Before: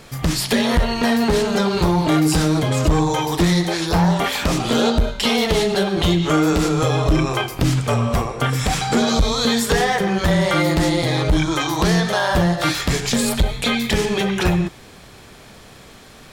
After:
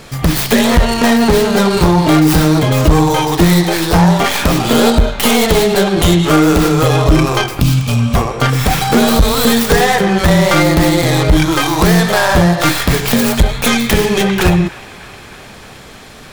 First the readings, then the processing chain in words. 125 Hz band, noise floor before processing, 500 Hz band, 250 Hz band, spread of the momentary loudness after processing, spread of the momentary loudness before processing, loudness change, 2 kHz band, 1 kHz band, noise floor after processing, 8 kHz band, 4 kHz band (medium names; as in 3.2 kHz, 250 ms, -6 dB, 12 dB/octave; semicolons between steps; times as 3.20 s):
+7.0 dB, -43 dBFS, +7.0 dB, +7.0 dB, 4 LU, 3 LU, +7.0 dB, +7.0 dB, +7.0 dB, -35 dBFS, +6.5 dB, +5.0 dB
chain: tracing distortion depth 0.32 ms; time-frequency box 7.61–8.15 s, 290–2200 Hz -13 dB; feedback echo behind a band-pass 310 ms, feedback 73%, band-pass 1.5 kHz, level -17 dB; trim +7 dB